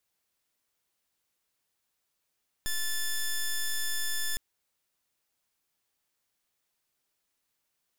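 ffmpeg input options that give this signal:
-f lavfi -i "aevalsrc='0.0335*(2*lt(mod(1750*t,1),0.08)-1)':d=1.71:s=44100"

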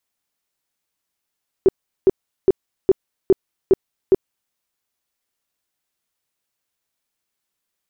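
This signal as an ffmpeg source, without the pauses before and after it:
-f lavfi -i "aevalsrc='0.422*sin(2*PI*382*mod(t,0.41))*lt(mod(t,0.41),10/382)':d=2.87:s=44100"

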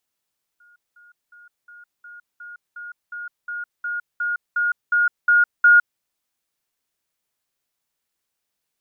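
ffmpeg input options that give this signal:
-f lavfi -i "aevalsrc='pow(10,(-50.5+3*floor(t/0.36))/20)*sin(2*PI*1430*t)*clip(min(mod(t,0.36),0.16-mod(t,0.36))/0.005,0,1)':d=5.4:s=44100"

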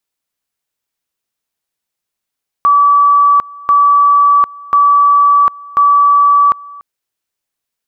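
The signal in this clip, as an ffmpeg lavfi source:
-f lavfi -i "aevalsrc='pow(10,(-5-23.5*gte(mod(t,1.04),0.75))/20)*sin(2*PI*1150*t)':d=4.16:s=44100"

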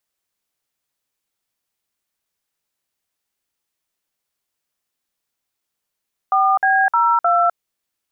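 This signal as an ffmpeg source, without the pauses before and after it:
-f lavfi -i "aevalsrc='0.178*clip(min(mod(t,0.308),0.254-mod(t,0.308))/0.002,0,1)*(eq(floor(t/0.308),0)*(sin(2*PI*770*mod(t,0.308))+sin(2*PI*1209*mod(t,0.308)))+eq(floor(t/0.308),1)*(sin(2*PI*770*mod(t,0.308))+sin(2*PI*1633*mod(t,0.308)))+eq(floor(t/0.308),2)*(sin(2*PI*941*mod(t,0.308))+sin(2*PI*1336*mod(t,0.308)))+eq(floor(t/0.308),3)*(sin(2*PI*697*mod(t,0.308))+sin(2*PI*1336*mod(t,0.308))))':d=1.232:s=44100"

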